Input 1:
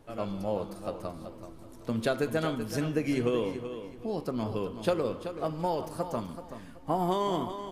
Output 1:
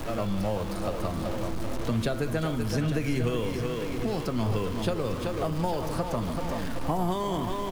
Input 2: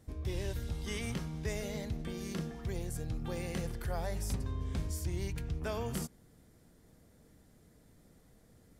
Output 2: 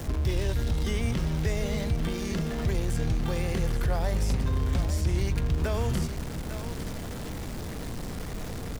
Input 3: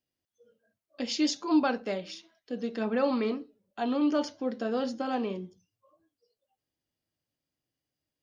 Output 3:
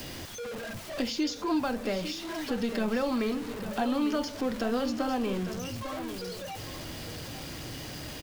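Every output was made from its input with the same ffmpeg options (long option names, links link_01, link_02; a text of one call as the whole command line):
ffmpeg -i in.wav -filter_complex "[0:a]aeval=exprs='val(0)+0.5*0.00944*sgn(val(0))':channel_layout=same,lowshelf=frequency=63:gain=7.5,acrossover=split=130|1000|6200[link_01][link_02][link_03][link_04];[link_01]acompressor=threshold=-33dB:ratio=4[link_05];[link_02]acompressor=threshold=-39dB:ratio=4[link_06];[link_03]acompressor=threshold=-47dB:ratio=4[link_07];[link_04]acompressor=threshold=-58dB:ratio=4[link_08];[link_05][link_06][link_07][link_08]amix=inputs=4:normalize=0,asplit=2[link_09][link_10];[link_10]aecho=0:1:852:0.299[link_11];[link_09][link_11]amix=inputs=2:normalize=0,volume=8.5dB" out.wav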